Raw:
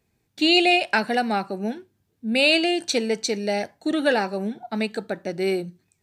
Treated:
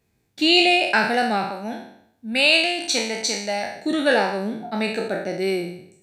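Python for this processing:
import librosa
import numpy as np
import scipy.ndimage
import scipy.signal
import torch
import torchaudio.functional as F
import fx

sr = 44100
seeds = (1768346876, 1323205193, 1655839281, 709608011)

y = fx.spec_trails(x, sr, decay_s=0.69)
y = fx.graphic_eq_15(y, sr, hz=(160, 400, 1000), db=(-9, -10, 5), at=(1.49, 3.76))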